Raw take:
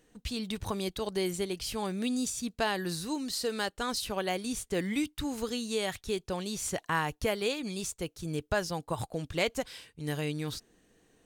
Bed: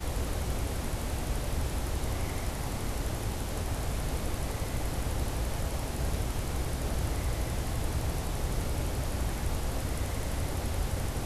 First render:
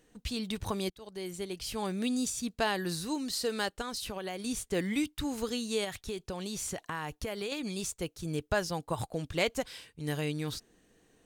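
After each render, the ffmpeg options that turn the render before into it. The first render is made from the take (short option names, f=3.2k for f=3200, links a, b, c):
-filter_complex "[0:a]asettb=1/sr,asplit=3[a][b][c];[a]atrim=end=3.814[d];[b]atrim=start=3.81:end=4.4,asetpts=PTS-STARTPTS,afade=t=in:d=0.004:c=qsin,afade=t=out:st=0.586:d=0.004:c=qsin,acompressor=threshold=-33dB:ratio=6:attack=3.2:release=140:knee=1:detection=peak[e];[c]atrim=start=4.396[f];[d][e]acrossfade=d=0.004:c1=hsin:c2=qsin[g];[g][f]acrossfade=d=0.004:c1=qsin:c2=hsin,asettb=1/sr,asplit=3[h][i][j];[h]atrim=end=5.844[k];[i]atrim=start=5.84:end=7.52,asetpts=PTS-STARTPTS,afade=t=in:d=0.004:c=qsin,afade=t=out:st=1.676:d=0.004:c=qsin,acompressor=threshold=-32dB:ratio=6:attack=3.2:release=140:knee=1:detection=peak[l];[j]atrim=start=7.516[m];[k][l]acrossfade=d=0.004:c1=hsin:c2=qsin[n];[n][m]acrossfade=d=0.004:c1=qsin:c2=hsin,asplit=2[o][p];[o]atrim=end=0.9,asetpts=PTS-STARTPTS,afade=t=out:st=0.896:d=0.004:c=hsin:silence=0.0794328[q];[p]atrim=start=0.9,asetpts=PTS-STARTPTS,afade=t=in:d=1:silence=0.0794328[r];[q][r]concat=n=2:v=0:a=1"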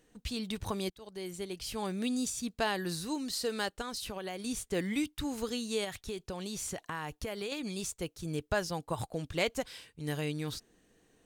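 -af "volume=-1.5dB"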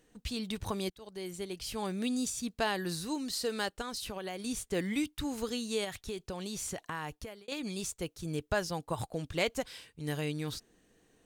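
-filter_complex "[0:a]asplit=2[a][b];[a]atrim=end=7.48,asetpts=PTS-STARTPTS,afade=t=out:st=7.07:d=0.41[c];[b]atrim=start=7.48,asetpts=PTS-STARTPTS,afade=t=in:d=0.004:c=hsin[d];[c][d]concat=n=2:v=0:a=1"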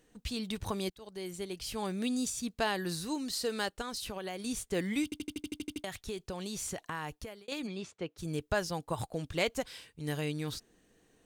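-filter_complex "[0:a]asplit=3[a][b][c];[a]afade=t=out:st=7.66:d=0.02[d];[b]highpass=160,lowpass=3k,afade=t=in:st=7.66:d=0.02,afade=t=out:st=8.17:d=0.02[e];[c]afade=t=in:st=8.17:d=0.02[f];[d][e][f]amix=inputs=3:normalize=0,asplit=11[g][h][i][j][k][l][m][n][o][p][q];[g]atrim=end=5.122[r];[h]atrim=start=5.038:end=5.122[s];[i]atrim=start=5.038:end=5.122[t];[j]atrim=start=5.038:end=5.122[u];[k]atrim=start=5.038:end=5.122[v];[l]atrim=start=5.038:end=5.122[w];[m]atrim=start=5.038:end=5.122[x];[n]atrim=start=5.038:end=5.122[y];[o]atrim=start=5.038:end=5.122[z];[p]atrim=start=5.038:end=5.122[aa];[q]atrim=start=5.838[ab];[r][s]acrossfade=d=0.004:c1=hsin:c2=hsin[ac];[ac][t]acrossfade=d=0.004:c1=hsin:c2=hsin[ad];[ad][u]acrossfade=d=0.004:c1=hsin:c2=hsin[ae];[ae][v]acrossfade=d=0.004:c1=hsin:c2=hsin[af];[af][w]acrossfade=d=0.004:c1=hsin:c2=hsin[ag];[ag][x]acrossfade=d=0.004:c1=hsin:c2=hsin[ah];[ah][y]acrossfade=d=0.004:c1=hsin:c2=hsin[ai];[ai][z]acrossfade=d=0.004:c1=hsin:c2=hsin[aj];[aj][aa]acrossfade=d=0.004:c1=hsin:c2=hsin[ak];[ak][ab]acrossfade=d=0.004:c1=hsin:c2=hsin"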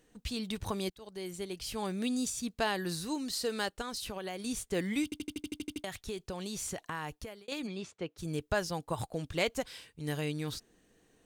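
-af anull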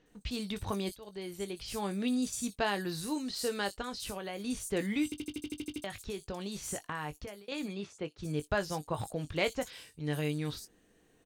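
-filter_complex "[0:a]asplit=2[a][b];[b]adelay=20,volume=-10.5dB[c];[a][c]amix=inputs=2:normalize=0,acrossover=split=5500[d][e];[e]adelay=60[f];[d][f]amix=inputs=2:normalize=0"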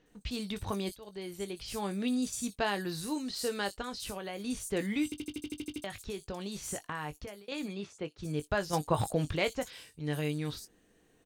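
-filter_complex "[0:a]asettb=1/sr,asplit=3[a][b][c];[a]atrim=end=8.734[d];[b]atrim=start=8.73:end=9.36,asetpts=PTS-STARTPTS,afade=t=in:d=0.004:c=qsin,afade=t=out:st=0.626:d=0.004:c=qsin,acontrast=64[e];[c]atrim=start=9.356[f];[d][e]acrossfade=d=0.004:c1=hsin:c2=qsin[g];[g][f]acrossfade=d=0.004:c1=qsin:c2=hsin"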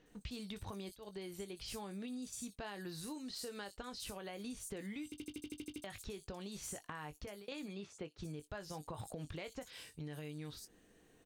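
-af "alimiter=level_in=0.5dB:limit=-24dB:level=0:latency=1:release=91,volume=-0.5dB,acompressor=threshold=-43dB:ratio=6"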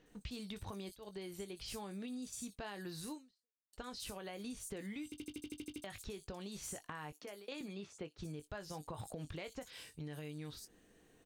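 -filter_complex "[0:a]asettb=1/sr,asplit=3[a][b][c];[a]atrim=end=7.124[d];[b]atrim=start=7.12:end=7.61,asetpts=PTS-STARTPTS,afade=t=in:d=0.004:c=qsin,afade=t=out:st=0.486:d=0.004:c=qsin,highpass=f=230:w=0.5412,highpass=f=230:w=1.3066[e];[c]atrim=start=7.606[f];[d][e]acrossfade=d=0.004:c1=hsin:c2=qsin[g];[g][f]acrossfade=d=0.004:c1=qsin:c2=hsin,asplit=2[h][i];[h]atrim=end=3.73,asetpts=PTS-STARTPTS,afade=t=out:st=3.14:d=0.59:c=exp[j];[i]atrim=start=3.73,asetpts=PTS-STARTPTS,afade=t=in:d=0.004:c=hsin[k];[j][k]concat=n=2:v=0:a=1"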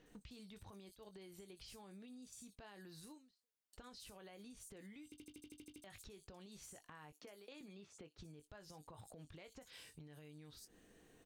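-af "alimiter=level_in=13.5dB:limit=-24dB:level=0:latency=1,volume=-13.5dB,acompressor=threshold=-54dB:ratio=6"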